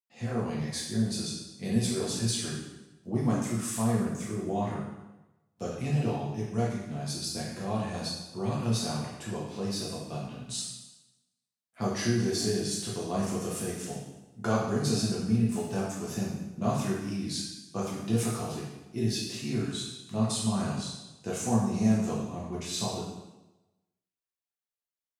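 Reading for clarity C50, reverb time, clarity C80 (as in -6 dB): 1.0 dB, 1.0 s, 4.0 dB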